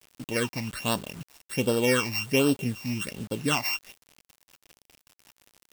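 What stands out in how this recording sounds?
a buzz of ramps at a fixed pitch in blocks of 16 samples; phasing stages 8, 1.3 Hz, lowest notch 420–2100 Hz; a quantiser's noise floor 8-bit, dither none

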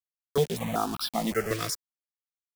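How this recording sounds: a quantiser's noise floor 6-bit, dither none; notches that jump at a steady rate 5.3 Hz 220–1900 Hz

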